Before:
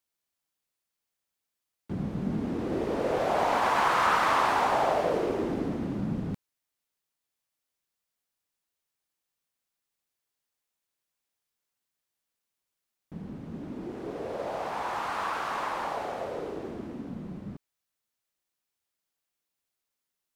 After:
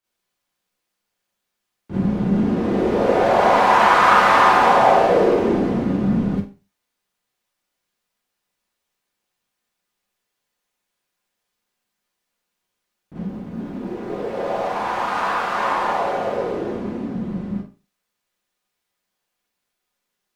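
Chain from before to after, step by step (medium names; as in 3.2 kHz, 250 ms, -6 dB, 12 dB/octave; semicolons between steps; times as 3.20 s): 13.23–15.53 s: companding laws mixed up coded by A; treble shelf 5.4 kHz -8.5 dB; Schroeder reverb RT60 0.32 s, combs from 31 ms, DRR -9.5 dB; trim +1.5 dB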